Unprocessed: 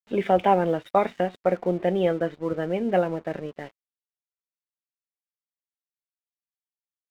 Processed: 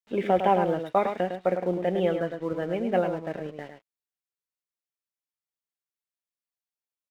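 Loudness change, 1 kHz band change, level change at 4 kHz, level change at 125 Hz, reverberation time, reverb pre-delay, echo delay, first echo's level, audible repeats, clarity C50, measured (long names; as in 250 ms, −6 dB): −2.0 dB, −2.0 dB, −2.0 dB, −2.5 dB, no reverb audible, no reverb audible, 105 ms, −7.5 dB, 1, no reverb audible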